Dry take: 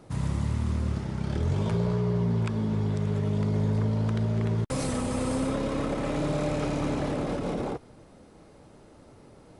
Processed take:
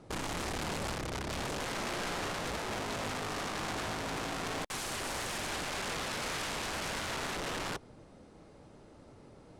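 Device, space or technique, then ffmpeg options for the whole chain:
overflowing digital effects unit: -filter_complex "[0:a]asettb=1/sr,asplit=3[link_01][link_02][link_03];[link_01]atrim=end=1.514[link_04];[link_02]atrim=start=1.51:end=2.22,asetpts=PTS-STARTPTS,afade=type=in:duration=0.004:curve=qsin,afade=type=out:start_time=0.706:duration=0.004:curve=qsin,highpass=160[link_05];[link_03]atrim=start=2.216[link_06];[link_04][link_05]acrossfade=duration=0.004:curve1=hsin:curve2=qsin[link_07];[link_07][link_06]acrossfade=duration=0.004:curve1=qsin:curve2=hsin,aeval=exprs='(mod(26.6*val(0)+1,2)-1)/26.6':channel_layout=same,lowpass=9100,volume=-3dB"

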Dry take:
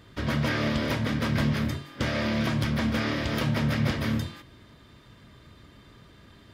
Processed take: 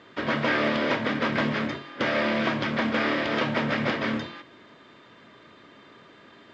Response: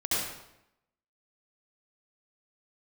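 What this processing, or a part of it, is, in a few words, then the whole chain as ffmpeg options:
telephone: -af "highpass=310,lowpass=3100,volume=6dB" -ar 16000 -c:a pcm_alaw

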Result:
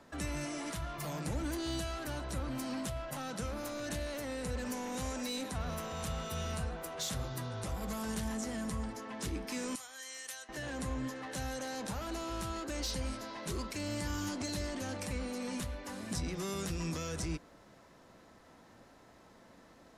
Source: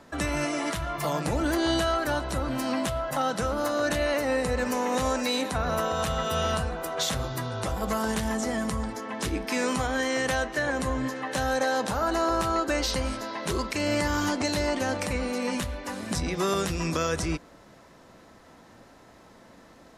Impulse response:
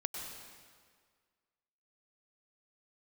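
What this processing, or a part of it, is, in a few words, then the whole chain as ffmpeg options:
one-band saturation: -filter_complex "[0:a]asettb=1/sr,asplit=3[link_01][link_02][link_03];[link_01]atrim=end=9.754[link_04];[link_02]atrim=start=9.75:end=10.49,asetpts=PTS-STARTPTS,afade=type=in:duration=0.004:curve=qsin,afade=type=out:start_time=0.736:duration=0.004:curve=qsin,aderivative[link_05];[link_03]atrim=start=10.486[link_06];[link_04][link_05]acrossfade=duration=0.004:curve1=hsin:curve2=qsin[link_07];[link_07][link_06]acrossfade=duration=0.004:curve1=qsin:curve2=hsin,acrossover=split=260|4600[link_08][link_09][link_10];[link_09]asoftclip=type=tanh:threshold=-34.5dB[link_11];[link_08][link_11][link_10]amix=inputs=3:normalize=0,volume=-6.5dB"

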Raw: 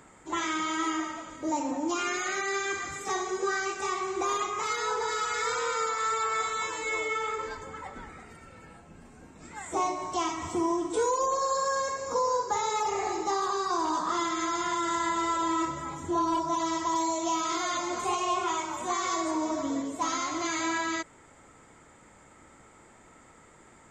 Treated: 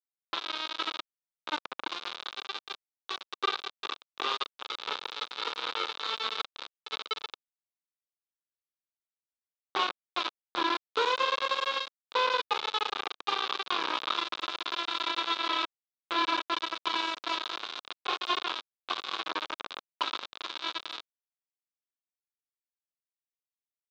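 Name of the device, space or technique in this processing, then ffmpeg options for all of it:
hand-held game console: -af "acrusher=bits=3:mix=0:aa=0.000001,highpass=470,equalizer=frequency=670:width_type=q:width=4:gain=-7,equalizer=frequency=1200:width_type=q:width=4:gain=4,equalizer=frequency=1900:width_type=q:width=4:gain=-8,equalizer=frequency=3700:width_type=q:width=4:gain=9,lowpass=frequency=4400:width=0.5412,lowpass=frequency=4400:width=1.3066,highshelf=frequency=5400:gain=-8"

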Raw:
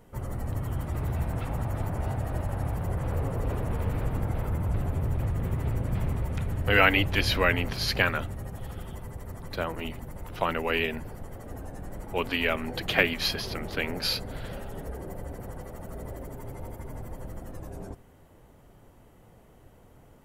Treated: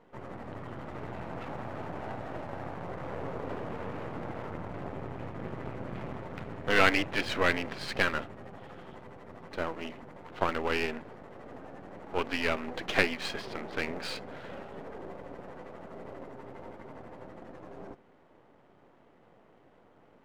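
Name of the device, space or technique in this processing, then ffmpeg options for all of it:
crystal radio: -af "highpass=230,lowpass=2600,aeval=exprs='if(lt(val(0),0),0.251*val(0),val(0))':channel_layout=same,volume=2dB"

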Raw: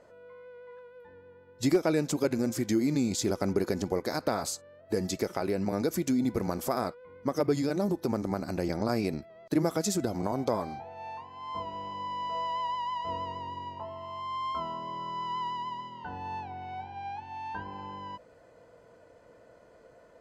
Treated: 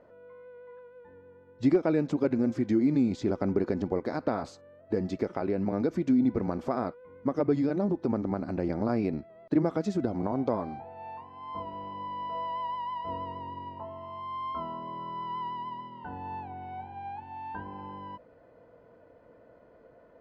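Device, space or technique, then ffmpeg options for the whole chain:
phone in a pocket: -af "lowpass=3600,equalizer=frequency=260:width_type=o:width=0.54:gain=4,highshelf=frequency=2300:gain=-9"

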